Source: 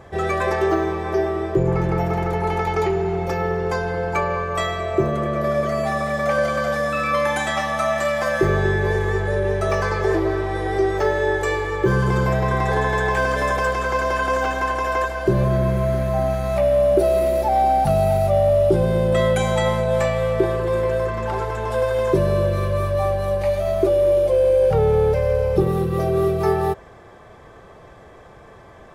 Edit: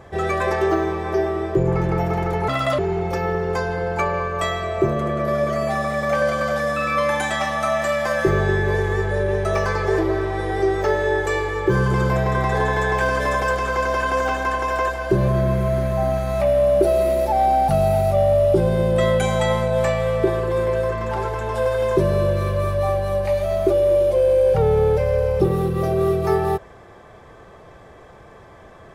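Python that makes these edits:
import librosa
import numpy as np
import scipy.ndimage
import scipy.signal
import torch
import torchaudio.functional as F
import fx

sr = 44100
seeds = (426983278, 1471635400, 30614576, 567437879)

y = fx.edit(x, sr, fx.speed_span(start_s=2.48, length_s=0.47, speed=1.53), tone=tone)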